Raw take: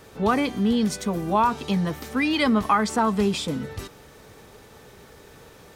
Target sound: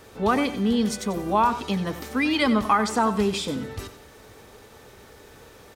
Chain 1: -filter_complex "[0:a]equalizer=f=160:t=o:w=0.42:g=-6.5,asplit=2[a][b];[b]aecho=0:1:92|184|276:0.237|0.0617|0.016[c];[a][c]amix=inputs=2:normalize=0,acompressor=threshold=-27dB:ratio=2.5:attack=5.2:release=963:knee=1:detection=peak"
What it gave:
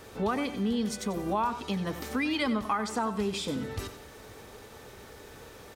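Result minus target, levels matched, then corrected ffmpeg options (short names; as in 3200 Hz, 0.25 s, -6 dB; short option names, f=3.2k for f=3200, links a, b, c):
compressor: peak gain reduction +9.5 dB
-filter_complex "[0:a]equalizer=f=160:t=o:w=0.42:g=-6.5,asplit=2[a][b];[b]aecho=0:1:92|184|276:0.237|0.0617|0.016[c];[a][c]amix=inputs=2:normalize=0"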